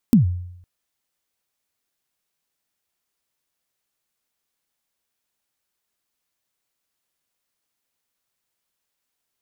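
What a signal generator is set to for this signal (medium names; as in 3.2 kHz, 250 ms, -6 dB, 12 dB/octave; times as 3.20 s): kick drum length 0.51 s, from 260 Hz, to 89 Hz, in 123 ms, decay 0.77 s, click on, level -7 dB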